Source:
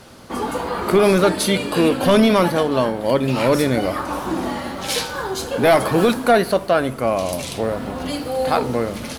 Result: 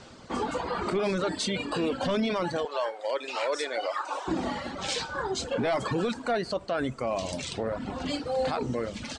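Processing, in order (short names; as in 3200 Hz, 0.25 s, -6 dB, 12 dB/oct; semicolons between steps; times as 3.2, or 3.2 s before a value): 2.65–4.28 HPF 470 Hz 24 dB/oct; reverb removal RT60 0.85 s; elliptic low-pass 8100 Hz, stop band 50 dB; limiter -16.5 dBFS, peak gain reduction 9.5 dB; gain -3.5 dB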